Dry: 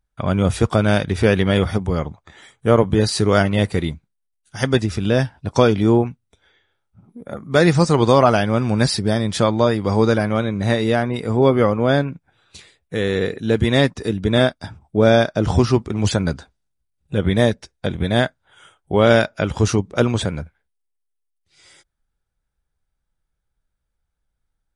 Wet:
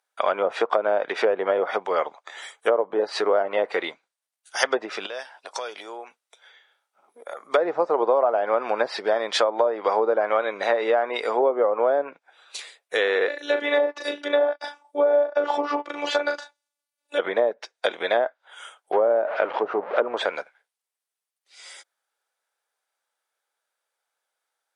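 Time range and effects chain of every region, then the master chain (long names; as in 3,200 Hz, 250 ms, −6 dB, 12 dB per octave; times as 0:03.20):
0:05.06–0:07.45: high-pass filter 400 Hz 6 dB per octave + downward compressor 4 to 1, threshold −35 dBFS
0:13.28–0:17.19: double-tracking delay 38 ms −6.5 dB + phases set to zero 291 Hz
0:18.92–0:20.17: converter with a step at zero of −22 dBFS + head-to-tape spacing loss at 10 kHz 44 dB
whole clip: treble cut that deepens with the level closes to 720 Hz, closed at −11.5 dBFS; high-pass filter 520 Hz 24 dB per octave; downward compressor 6 to 1, threshold −23 dBFS; level +6.5 dB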